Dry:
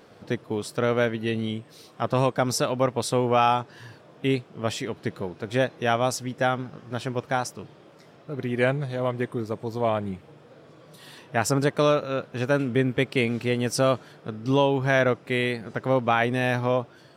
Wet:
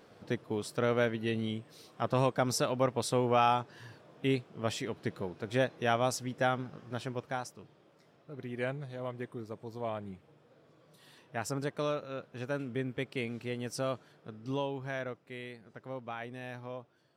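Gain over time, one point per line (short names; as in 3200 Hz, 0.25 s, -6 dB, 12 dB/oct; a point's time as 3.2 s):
6.84 s -6 dB
7.53 s -12.5 dB
14.48 s -12.5 dB
15.25 s -19 dB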